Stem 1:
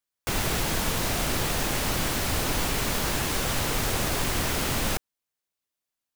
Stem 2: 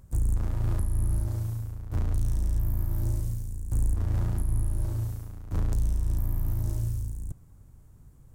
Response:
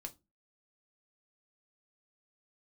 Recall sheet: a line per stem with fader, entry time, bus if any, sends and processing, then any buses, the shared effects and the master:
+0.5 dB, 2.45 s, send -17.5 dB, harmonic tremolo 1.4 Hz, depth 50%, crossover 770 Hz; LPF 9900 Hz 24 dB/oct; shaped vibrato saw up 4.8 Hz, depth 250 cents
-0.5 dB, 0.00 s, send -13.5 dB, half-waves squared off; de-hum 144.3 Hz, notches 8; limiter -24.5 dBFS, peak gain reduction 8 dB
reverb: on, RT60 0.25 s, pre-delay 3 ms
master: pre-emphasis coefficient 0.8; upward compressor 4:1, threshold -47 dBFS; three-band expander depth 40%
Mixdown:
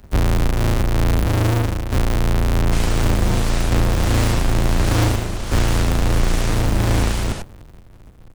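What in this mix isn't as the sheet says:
stem 2 -0.5 dB -> +11.0 dB; master: missing pre-emphasis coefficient 0.8

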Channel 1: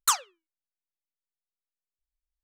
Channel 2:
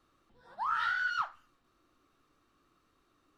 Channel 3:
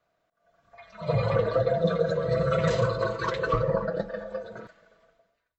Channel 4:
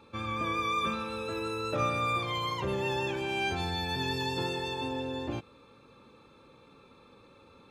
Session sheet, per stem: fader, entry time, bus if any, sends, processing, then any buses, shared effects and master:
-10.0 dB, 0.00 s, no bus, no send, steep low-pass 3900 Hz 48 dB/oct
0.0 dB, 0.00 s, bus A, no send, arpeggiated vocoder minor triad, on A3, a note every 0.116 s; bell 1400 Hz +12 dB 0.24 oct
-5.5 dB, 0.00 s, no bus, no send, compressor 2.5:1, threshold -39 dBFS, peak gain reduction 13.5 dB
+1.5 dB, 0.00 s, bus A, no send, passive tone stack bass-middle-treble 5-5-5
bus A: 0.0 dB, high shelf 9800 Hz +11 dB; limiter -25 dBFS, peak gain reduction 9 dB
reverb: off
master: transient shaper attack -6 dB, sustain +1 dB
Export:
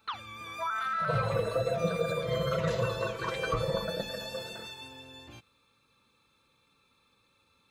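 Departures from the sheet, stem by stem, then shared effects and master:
stem 3: missing compressor 2.5:1, threshold -39 dBFS, peak gain reduction 13.5 dB; master: missing transient shaper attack -6 dB, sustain +1 dB

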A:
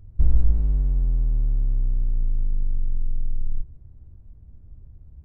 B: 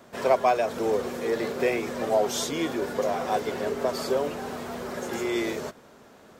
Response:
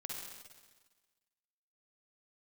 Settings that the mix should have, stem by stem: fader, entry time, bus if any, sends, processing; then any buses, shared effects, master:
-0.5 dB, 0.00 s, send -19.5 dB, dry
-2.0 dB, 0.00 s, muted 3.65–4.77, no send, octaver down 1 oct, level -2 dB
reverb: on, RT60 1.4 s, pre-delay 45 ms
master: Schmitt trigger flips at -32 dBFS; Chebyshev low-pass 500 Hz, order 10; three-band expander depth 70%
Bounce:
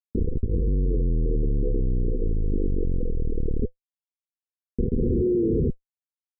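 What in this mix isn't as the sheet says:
stem B: missing octaver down 1 oct, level -2 dB; master: missing three-band expander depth 70%

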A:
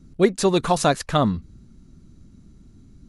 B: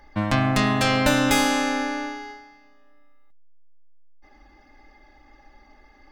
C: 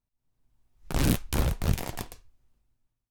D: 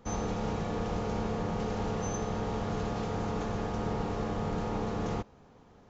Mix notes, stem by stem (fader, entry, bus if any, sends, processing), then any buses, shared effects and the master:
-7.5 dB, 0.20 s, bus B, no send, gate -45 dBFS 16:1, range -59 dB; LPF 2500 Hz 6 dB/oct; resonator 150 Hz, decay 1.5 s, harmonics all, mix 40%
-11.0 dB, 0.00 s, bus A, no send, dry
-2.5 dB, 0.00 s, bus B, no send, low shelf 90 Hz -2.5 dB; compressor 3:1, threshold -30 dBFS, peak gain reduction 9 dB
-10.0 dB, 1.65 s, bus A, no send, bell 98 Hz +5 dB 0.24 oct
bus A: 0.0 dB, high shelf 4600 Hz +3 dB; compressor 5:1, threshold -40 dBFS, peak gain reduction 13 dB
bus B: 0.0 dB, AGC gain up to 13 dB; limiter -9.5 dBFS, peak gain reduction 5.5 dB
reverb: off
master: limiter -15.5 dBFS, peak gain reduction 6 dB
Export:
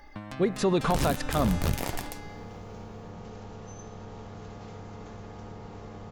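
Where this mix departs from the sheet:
stem B -11.0 dB -> 0.0 dB; stem D -10.0 dB -> -2.5 dB

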